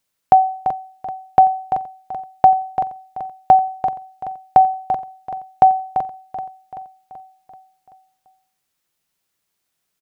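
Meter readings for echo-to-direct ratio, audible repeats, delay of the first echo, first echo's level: −9.0 dB, 5, 383 ms, −10.5 dB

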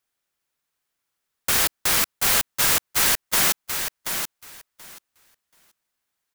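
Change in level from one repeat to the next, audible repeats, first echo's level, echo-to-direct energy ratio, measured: −16.5 dB, 2, −7.0 dB, −7.0 dB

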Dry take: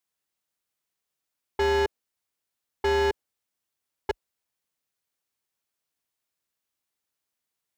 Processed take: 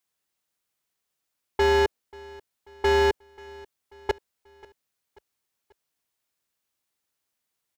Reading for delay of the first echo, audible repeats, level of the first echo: 537 ms, 2, −23.0 dB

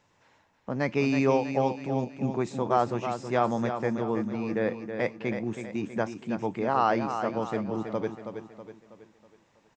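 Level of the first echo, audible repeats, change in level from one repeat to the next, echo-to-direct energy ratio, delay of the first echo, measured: −8.0 dB, 5, −6.5 dB, −7.0 dB, 323 ms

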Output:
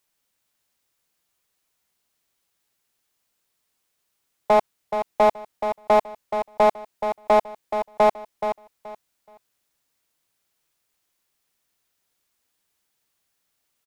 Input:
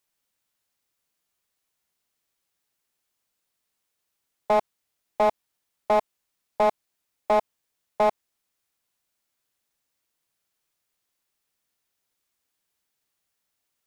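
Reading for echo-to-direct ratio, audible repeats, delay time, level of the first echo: −8.5 dB, 3, 426 ms, −8.5 dB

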